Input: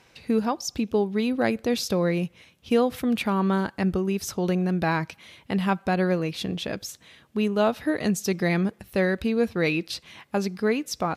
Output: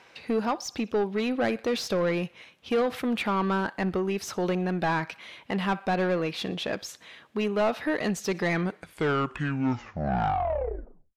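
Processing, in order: tape stop on the ending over 2.67 s; thinning echo 62 ms, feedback 53%, high-pass 850 Hz, level -24 dB; overdrive pedal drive 20 dB, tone 2.1 kHz, clips at -9 dBFS; trim -7 dB

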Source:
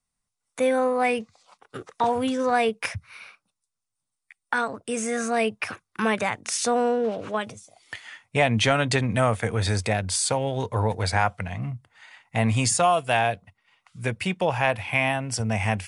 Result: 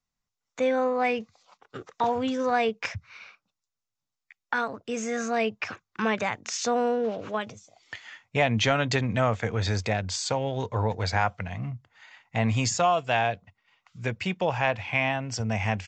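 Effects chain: resampled via 16 kHz; trim -2.5 dB

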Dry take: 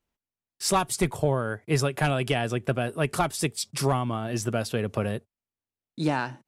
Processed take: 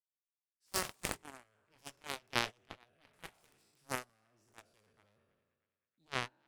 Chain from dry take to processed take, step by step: spectral sustain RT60 1.51 s; Chebyshev shaper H 3 -8 dB, 4 -35 dB, 6 -39 dB, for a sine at -6.5 dBFS; band-passed feedback delay 316 ms, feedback 56%, band-pass 2 kHz, level -13.5 dB; gate -33 dBFS, range -26 dB; trim -4 dB

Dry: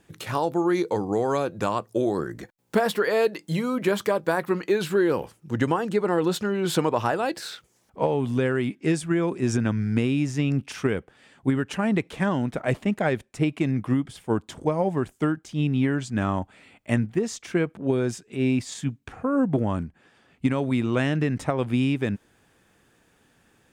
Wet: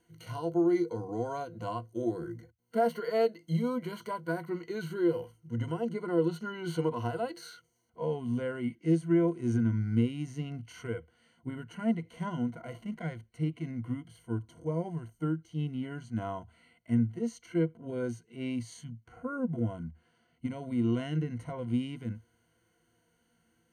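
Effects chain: harmonic-percussive split percussive -15 dB; rippled EQ curve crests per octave 1.9, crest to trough 17 dB; trim -9 dB

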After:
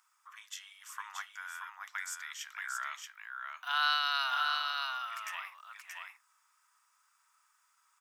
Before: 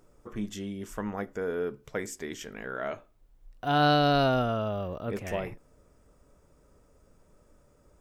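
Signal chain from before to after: steep high-pass 1 kHz 48 dB/octave; on a send: delay 628 ms -4 dB

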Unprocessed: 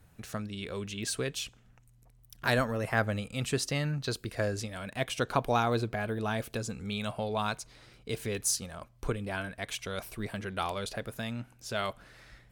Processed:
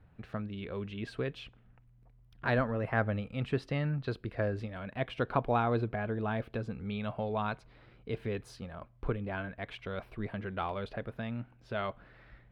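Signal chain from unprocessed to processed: distance through air 430 m

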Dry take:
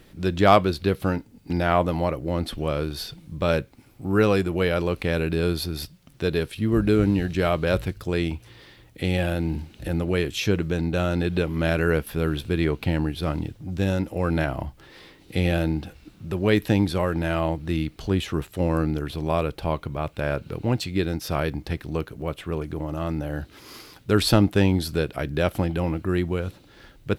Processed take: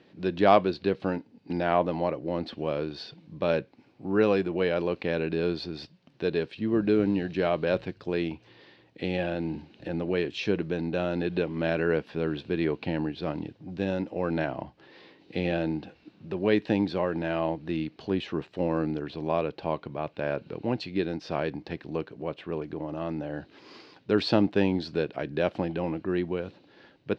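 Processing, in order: cabinet simulation 200–4300 Hz, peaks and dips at 1.3 kHz -7 dB, 2.1 kHz -4 dB, 3.4 kHz -5 dB; trim -2 dB

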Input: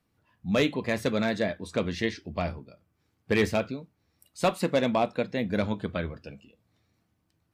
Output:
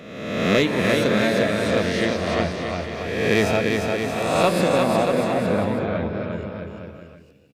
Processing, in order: reverse spectral sustain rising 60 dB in 1.24 s; 4.68–6.32 s: tape spacing loss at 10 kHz 31 dB; on a send: bouncing-ball echo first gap 350 ms, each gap 0.8×, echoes 5; on the sum: trim +2.5 dB

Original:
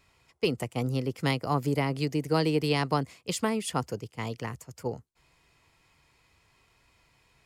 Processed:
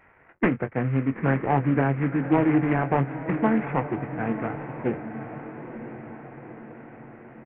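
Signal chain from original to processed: CVSD coder 16 kbps; bass shelf 180 Hz -8 dB; formant shift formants -5 st; doubling 22 ms -9.5 dB; echo that smears into a reverb 937 ms, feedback 57%, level -10.5 dB; loudspeaker Doppler distortion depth 0.17 ms; trim +8 dB

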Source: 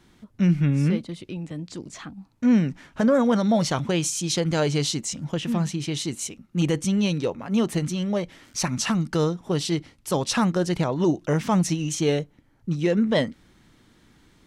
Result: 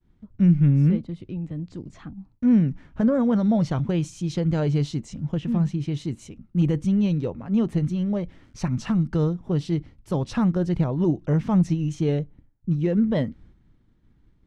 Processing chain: expander -49 dBFS; RIAA curve playback; trim -6.5 dB

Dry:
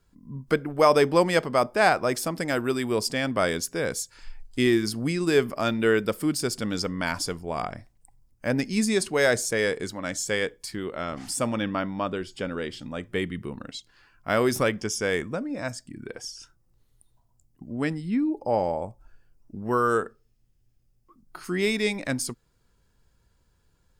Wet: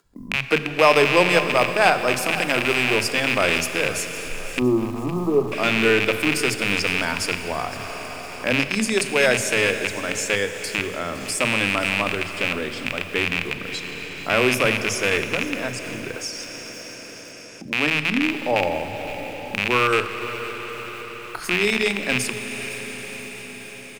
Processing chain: rattle on loud lows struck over -34 dBFS, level -11 dBFS; gate -53 dBFS, range -58 dB; Schroeder reverb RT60 3.8 s, combs from 28 ms, DRR 9 dB; upward compressor, threshold -25 dBFS; 4.59–5.52 s: brick-wall FIR low-pass 1.3 kHz; 16.11–17.83 s: bass shelf 110 Hz -11.5 dB; bands offset in time highs, lows 40 ms, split 190 Hz; bit-crushed delay 511 ms, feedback 55%, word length 6-bit, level -14.5 dB; trim +2.5 dB

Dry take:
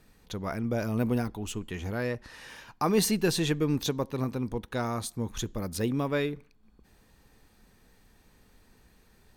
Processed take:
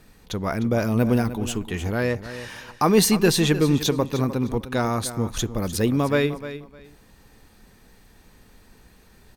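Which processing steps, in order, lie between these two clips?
feedback delay 304 ms, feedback 21%, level -13 dB; trim +7.5 dB

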